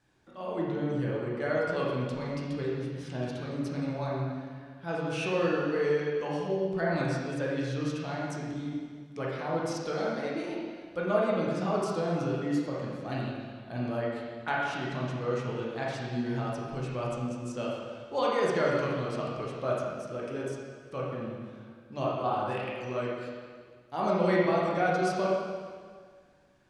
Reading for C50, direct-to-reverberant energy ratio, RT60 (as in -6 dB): -1.0 dB, -5.5 dB, 1.8 s